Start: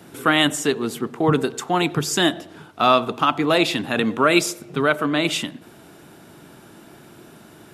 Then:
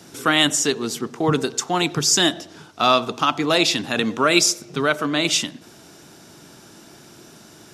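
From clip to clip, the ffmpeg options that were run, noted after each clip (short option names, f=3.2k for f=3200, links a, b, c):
-af "equalizer=f=5.7k:w=1.3:g=13.5,volume=-1.5dB"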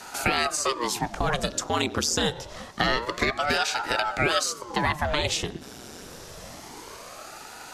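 -filter_complex "[0:a]acrossover=split=330|1200[a][b][c];[a]acompressor=threshold=-35dB:ratio=4[d];[b]acompressor=threshold=-33dB:ratio=4[e];[c]acompressor=threshold=-31dB:ratio=4[f];[d][e][f]amix=inputs=3:normalize=0,aeval=exprs='val(0)*sin(2*PI*590*n/s+590*0.9/0.26*sin(2*PI*0.26*n/s))':c=same,volume=6.5dB"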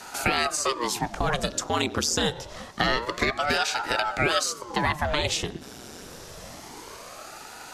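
-af anull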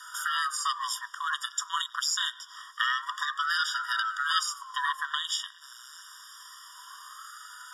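-af "afftfilt=real='re*eq(mod(floor(b*sr/1024/950),2),1)':imag='im*eq(mod(floor(b*sr/1024/950),2),1)':win_size=1024:overlap=0.75"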